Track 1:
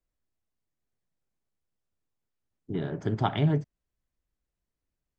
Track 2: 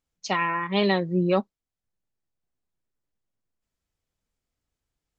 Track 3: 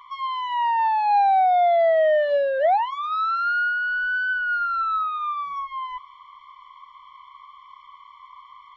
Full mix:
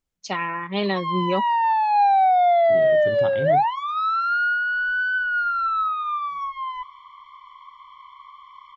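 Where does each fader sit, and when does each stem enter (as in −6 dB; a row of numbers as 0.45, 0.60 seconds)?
−5.5, −1.5, +1.0 decibels; 0.00, 0.00, 0.85 seconds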